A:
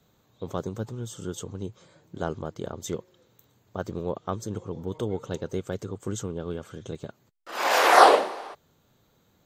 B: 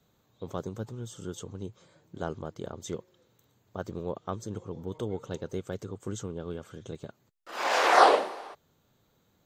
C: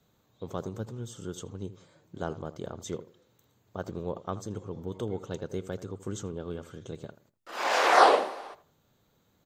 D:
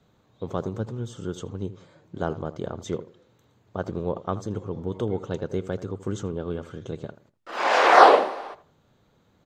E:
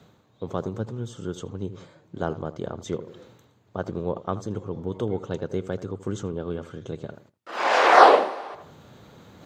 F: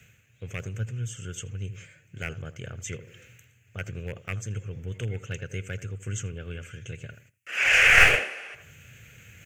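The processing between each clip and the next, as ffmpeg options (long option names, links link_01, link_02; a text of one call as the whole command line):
ffmpeg -i in.wav -filter_complex "[0:a]acrossover=split=8900[link_01][link_02];[link_02]acompressor=threshold=-55dB:ratio=4:attack=1:release=60[link_03];[link_01][link_03]amix=inputs=2:normalize=0,volume=-4dB" out.wav
ffmpeg -i in.wav -filter_complex "[0:a]asplit=2[link_01][link_02];[link_02]adelay=81,lowpass=frequency=1900:poles=1,volume=-14.5dB,asplit=2[link_03][link_04];[link_04]adelay=81,lowpass=frequency=1900:poles=1,volume=0.27,asplit=2[link_05][link_06];[link_06]adelay=81,lowpass=frequency=1900:poles=1,volume=0.27[link_07];[link_01][link_03][link_05][link_07]amix=inputs=4:normalize=0" out.wav
ffmpeg -i in.wav -af "aemphasis=mode=reproduction:type=50fm,volume=6dB" out.wav
ffmpeg -i in.wav -af "highpass=69,areverse,acompressor=mode=upward:threshold=-35dB:ratio=2.5,areverse" out.wav
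ffmpeg -i in.wav -af "aeval=exprs='clip(val(0),-1,0.158)':channel_layout=same,firequalizer=gain_entry='entry(120,0);entry(170,-11);entry(310,-19);entry(470,-13);entry(990,-25);entry(1500,0);entry(2600,12);entry(3800,-14);entry(6500,6)':delay=0.05:min_phase=1,volume=3dB" out.wav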